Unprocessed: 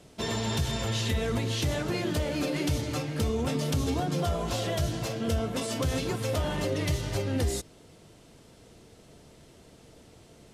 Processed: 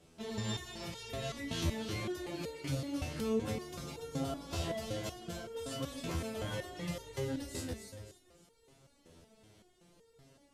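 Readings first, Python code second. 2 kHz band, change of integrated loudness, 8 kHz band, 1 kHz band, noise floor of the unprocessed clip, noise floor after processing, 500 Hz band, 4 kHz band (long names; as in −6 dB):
−9.0 dB, −9.5 dB, −9.5 dB, −10.0 dB, −55 dBFS, −67 dBFS, −8.5 dB, −9.0 dB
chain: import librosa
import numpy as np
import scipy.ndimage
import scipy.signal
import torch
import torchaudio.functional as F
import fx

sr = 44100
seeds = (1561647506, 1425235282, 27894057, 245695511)

y = fx.echo_feedback(x, sr, ms=286, feedback_pct=33, wet_db=-4)
y = fx.resonator_held(y, sr, hz=5.3, low_hz=83.0, high_hz=460.0)
y = y * 10.0 ** (1.0 / 20.0)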